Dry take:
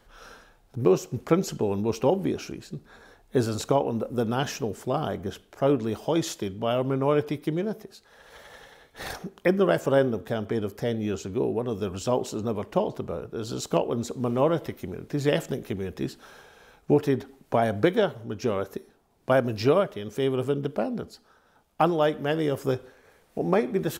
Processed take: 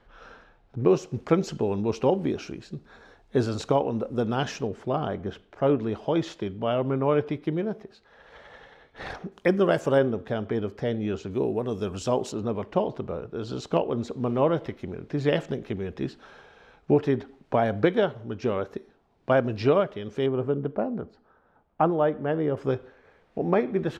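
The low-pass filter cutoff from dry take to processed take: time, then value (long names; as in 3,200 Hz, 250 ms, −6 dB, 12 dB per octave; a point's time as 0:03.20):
3,000 Hz
from 0:00.88 5,200 Hz
from 0:04.67 3,100 Hz
from 0:09.32 7,600 Hz
from 0:09.98 3,700 Hz
from 0:11.31 8,600 Hz
from 0:12.32 3,800 Hz
from 0:20.26 1,500 Hz
from 0:22.57 3,000 Hz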